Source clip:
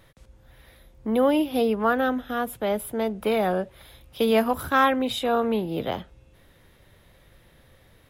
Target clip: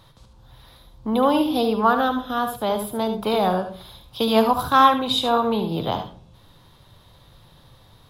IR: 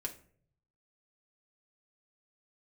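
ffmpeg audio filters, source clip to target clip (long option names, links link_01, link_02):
-filter_complex "[0:a]equalizer=frequency=125:width_type=o:width=1:gain=7,equalizer=frequency=500:width_type=o:width=1:gain=-3,equalizer=frequency=1000:width_type=o:width=1:gain=11,equalizer=frequency=2000:width_type=o:width=1:gain=-9,equalizer=frequency=4000:width_type=o:width=1:gain=11,asplit=2[link_01][link_02];[1:a]atrim=start_sample=2205,adelay=72[link_03];[link_02][link_03]afir=irnorm=-1:irlink=0,volume=-6.5dB[link_04];[link_01][link_04]amix=inputs=2:normalize=0"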